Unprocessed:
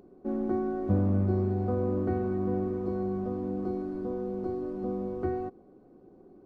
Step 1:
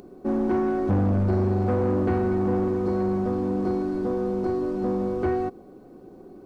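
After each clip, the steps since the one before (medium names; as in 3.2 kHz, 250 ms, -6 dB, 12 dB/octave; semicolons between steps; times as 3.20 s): treble shelf 2 kHz +9 dB; saturation -26 dBFS, distortion -12 dB; trim +8.5 dB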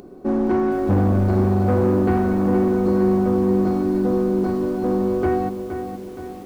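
bit-crushed delay 470 ms, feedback 55%, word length 8-bit, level -8.5 dB; trim +4 dB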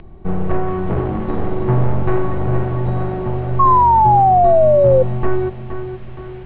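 mistuned SSB -370 Hz 360–3500 Hz; painted sound fall, 3.59–5.03 s, 510–1100 Hz -19 dBFS; trim +8 dB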